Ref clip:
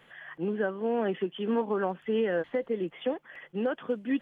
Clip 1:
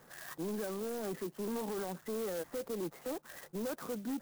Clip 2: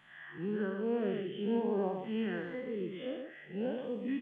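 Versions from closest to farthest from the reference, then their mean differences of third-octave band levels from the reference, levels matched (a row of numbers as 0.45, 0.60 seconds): 2, 1; 4.5, 13.5 decibels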